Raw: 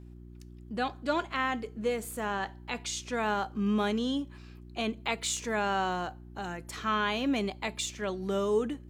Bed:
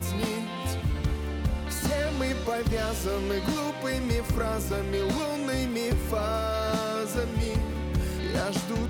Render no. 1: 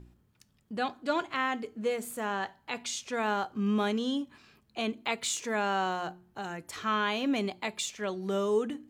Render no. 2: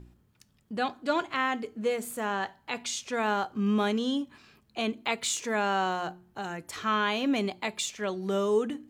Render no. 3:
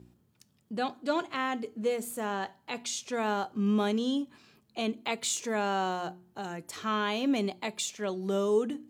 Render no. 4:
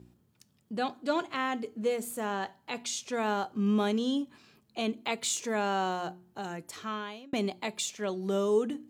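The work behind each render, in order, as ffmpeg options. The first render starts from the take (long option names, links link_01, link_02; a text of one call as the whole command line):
ffmpeg -i in.wav -af "bandreject=frequency=60:width_type=h:width=4,bandreject=frequency=120:width_type=h:width=4,bandreject=frequency=180:width_type=h:width=4,bandreject=frequency=240:width_type=h:width=4,bandreject=frequency=300:width_type=h:width=4,bandreject=frequency=360:width_type=h:width=4" out.wav
ffmpeg -i in.wav -af "volume=2dB" out.wav
ffmpeg -i in.wav -af "highpass=110,equalizer=frequency=1700:width_type=o:width=1.9:gain=-5" out.wav
ffmpeg -i in.wav -filter_complex "[0:a]asplit=2[link_01][link_02];[link_01]atrim=end=7.33,asetpts=PTS-STARTPTS,afade=type=out:start_time=6.56:duration=0.77[link_03];[link_02]atrim=start=7.33,asetpts=PTS-STARTPTS,afade=type=in:duration=0.004:curve=hsin[link_04];[link_03][link_04]concat=n=2:v=0:a=1" out.wav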